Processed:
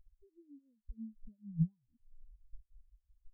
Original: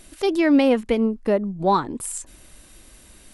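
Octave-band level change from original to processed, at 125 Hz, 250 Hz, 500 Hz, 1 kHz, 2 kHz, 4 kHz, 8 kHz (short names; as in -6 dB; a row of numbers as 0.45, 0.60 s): -5.0 dB, -23.0 dB, under -40 dB, under -40 dB, under -40 dB, under -40 dB, under -40 dB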